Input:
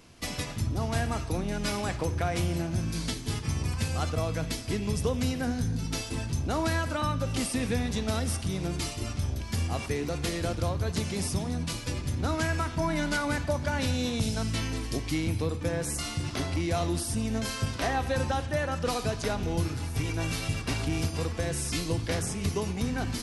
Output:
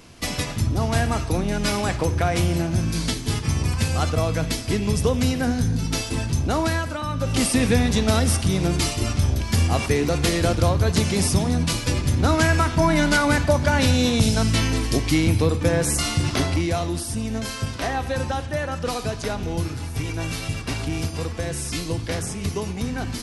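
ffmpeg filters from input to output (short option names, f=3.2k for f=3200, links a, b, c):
-af "volume=17.5dB,afade=t=out:st=6.46:d=0.59:silence=0.421697,afade=t=in:st=7.05:d=0.42:silence=0.316228,afade=t=out:st=16.34:d=0.49:silence=0.446684"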